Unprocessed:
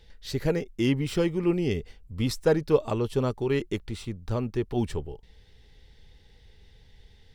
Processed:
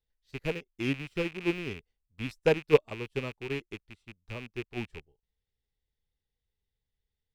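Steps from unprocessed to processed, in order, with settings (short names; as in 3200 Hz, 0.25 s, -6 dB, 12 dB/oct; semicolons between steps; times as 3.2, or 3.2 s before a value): rattling part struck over -34 dBFS, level -17 dBFS; upward expander 2.5:1, over -38 dBFS; gain +1.5 dB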